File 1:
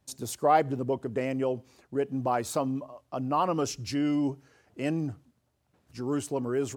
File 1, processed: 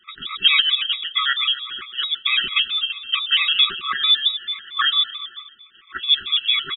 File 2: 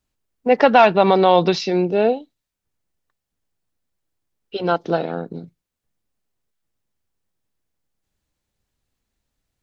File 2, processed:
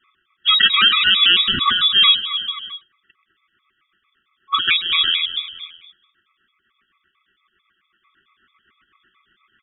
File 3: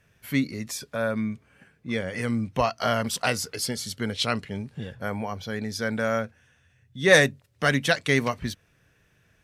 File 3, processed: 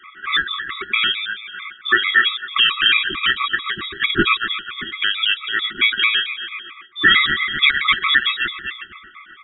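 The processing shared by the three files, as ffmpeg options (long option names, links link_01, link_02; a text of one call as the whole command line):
ffmpeg -i in.wav -filter_complex "[0:a]asplit=2[link_01][link_02];[link_02]aecho=0:1:130|260|390|520|650:0.188|0.0942|0.0471|0.0235|0.0118[link_03];[link_01][link_03]amix=inputs=2:normalize=0,acompressor=threshold=-40dB:ratio=2,acrossover=split=730[link_04][link_05];[link_04]aeval=exprs='val(0)*(1-0.7/2+0.7/2*cos(2*PI*8*n/s))':channel_layout=same[link_06];[link_05]aeval=exprs='val(0)*(1-0.7/2-0.7/2*cos(2*PI*8*n/s))':channel_layout=same[link_07];[link_06][link_07]amix=inputs=2:normalize=0,highpass=frequency=310:width=0.5412,highpass=frequency=310:width=1.3066,aecho=1:1:6.4:0.44,aeval=exprs='(tanh(25.1*val(0)+0.7)-tanh(0.7))/25.1':channel_layout=same,equalizer=frequency=2800:width_type=o:width=1.2:gain=13,lowpass=frequency=3200:width_type=q:width=0.5098,lowpass=frequency=3200:width_type=q:width=0.6013,lowpass=frequency=3200:width_type=q:width=0.9,lowpass=frequency=3200:width_type=q:width=2.563,afreqshift=-3800,afftfilt=real='re*(1-between(b*sr/4096,410,1100))':imag='im*(1-between(b*sr/4096,410,1100))':win_size=4096:overlap=0.75,adynamicequalizer=threshold=0.00126:dfrequency=780:dqfactor=1.1:tfrequency=780:tqfactor=1.1:attack=5:release=100:ratio=0.375:range=3:mode=cutabove:tftype=bell,alimiter=level_in=28.5dB:limit=-1dB:release=50:level=0:latency=1,afftfilt=real='re*gt(sin(2*PI*4.5*pts/sr)*(1-2*mod(floor(b*sr/1024/660),2)),0)':imag='im*gt(sin(2*PI*4.5*pts/sr)*(1-2*mod(floor(b*sr/1024/660),2)),0)':win_size=1024:overlap=0.75" out.wav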